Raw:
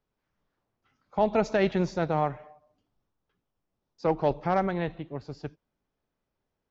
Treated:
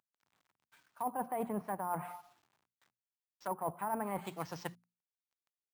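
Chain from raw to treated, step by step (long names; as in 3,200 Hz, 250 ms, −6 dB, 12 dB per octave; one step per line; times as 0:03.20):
variable-slope delta modulation 64 kbit/s
treble cut that deepens with the level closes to 680 Hz, closed at −23 dBFS
high-pass filter 82 Hz 24 dB per octave
low shelf with overshoot 580 Hz −8.5 dB, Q 1.5
mains-hum notches 50/100/150/200 Hz
reversed playback
downward compressor 16 to 1, threshold −37 dBFS, peak gain reduction 15 dB
reversed playback
speed change +17%
bad sample-rate conversion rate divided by 4×, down none, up hold
level +4.5 dB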